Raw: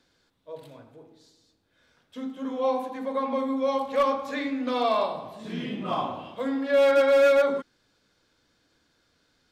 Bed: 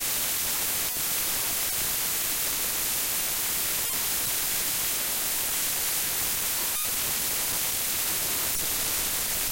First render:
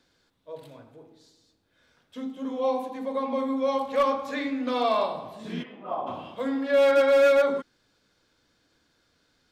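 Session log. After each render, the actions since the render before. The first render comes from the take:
0:02.22–0:03.38: parametric band 1,500 Hz −6 dB
0:05.62–0:06.06: resonant band-pass 1,200 Hz → 530 Hz, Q 1.5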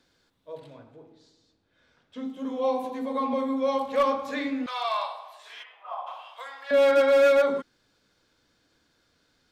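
0:00.59–0:02.25: high-frequency loss of the air 66 metres
0:02.83–0:03.34: double-tracking delay 12 ms −3 dB
0:04.66–0:06.71: inverse Chebyshev high-pass filter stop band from 180 Hz, stop band 70 dB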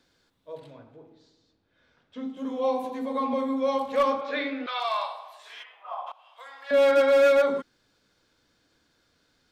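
0:00.71–0:02.37: high-frequency loss of the air 62 metres
0:04.21–0:04.80: loudspeaker in its box 330–4,700 Hz, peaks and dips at 400 Hz +7 dB, 620 Hz +6 dB, 980 Hz −3 dB, 1,400 Hz +6 dB, 2,300 Hz +4 dB, 3,500 Hz +4 dB
0:06.12–0:06.77: fade in, from −19.5 dB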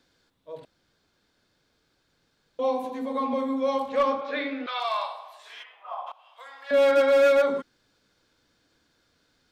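0:00.65–0:02.59: fill with room tone
0:03.89–0:04.51: high-frequency loss of the air 53 metres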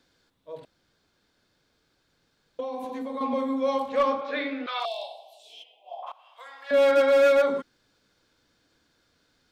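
0:02.60–0:03.21: downward compressor 10 to 1, threshold −29 dBFS
0:04.85–0:06.03: elliptic band-stop filter 740–2,900 Hz, stop band 60 dB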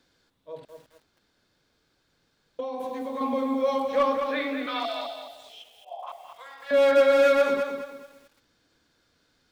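feedback echo at a low word length 212 ms, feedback 35%, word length 9 bits, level −6.5 dB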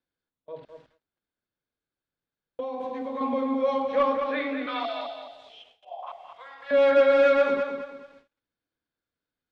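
low-pass filter 3,400 Hz 12 dB per octave
noise gate with hold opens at −44 dBFS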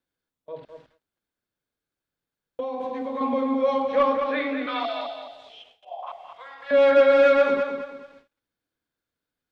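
level +2.5 dB

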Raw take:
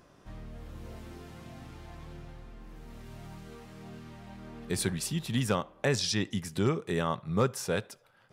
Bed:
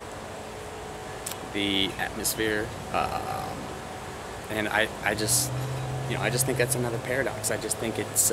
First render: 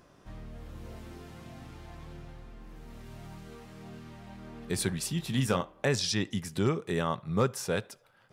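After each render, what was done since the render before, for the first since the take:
0:05.16–0:05.72: double-tracking delay 23 ms −8.5 dB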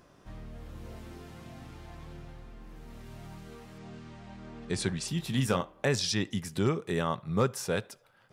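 0:03.78–0:05.08: low-pass filter 8,300 Hz 24 dB per octave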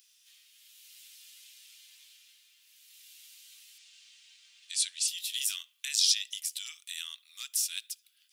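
Chebyshev high-pass filter 2,900 Hz, order 3
spectral tilt +3.5 dB per octave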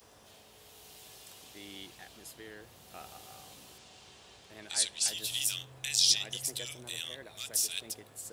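mix in bed −22 dB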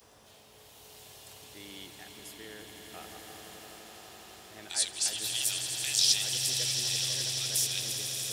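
echo that builds up and dies away 84 ms, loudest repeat 8, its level −11.5 dB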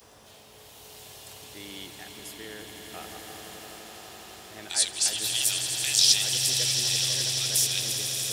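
level +5 dB

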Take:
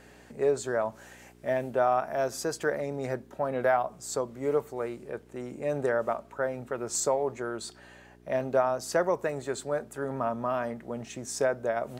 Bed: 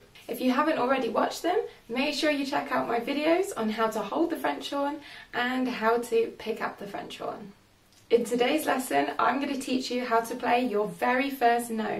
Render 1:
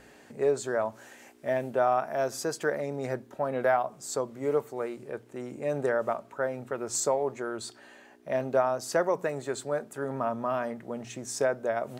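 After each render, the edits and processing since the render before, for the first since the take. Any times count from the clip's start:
hum removal 60 Hz, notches 3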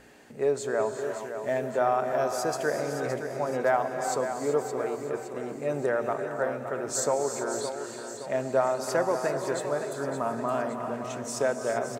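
repeating echo 567 ms, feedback 50%, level −9 dB
reverb whose tail is shaped and stops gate 410 ms rising, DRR 6 dB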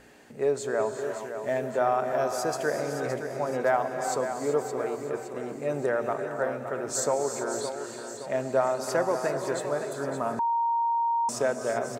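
0:10.39–0:11.29: beep over 931 Hz −22.5 dBFS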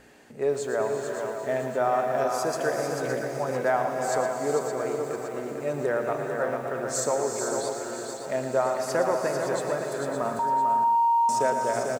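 on a send: single-tap delay 446 ms −6 dB
on the sum: feedback echo at a low word length 115 ms, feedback 35%, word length 8 bits, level −9.5 dB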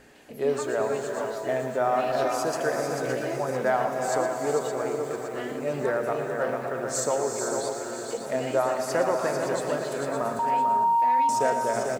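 mix in bed −12 dB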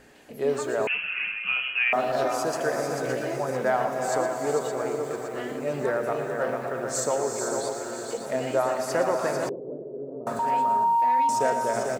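0:00.87–0:01.93: voice inversion scrambler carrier 3,100 Hz
0:09.49–0:10.27: transistor ladder low-pass 480 Hz, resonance 50%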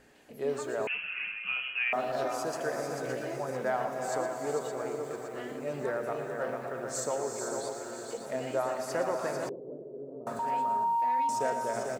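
level −6.5 dB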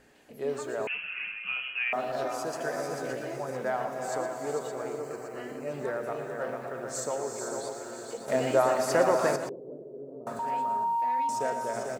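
0:02.59–0:03.13: double-tracking delay 12 ms −5.5 dB
0:05.00–0:05.71: Butterworth band-reject 3,500 Hz, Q 4.6
0:08.28–0:09.36: clip gain +7.5 dB

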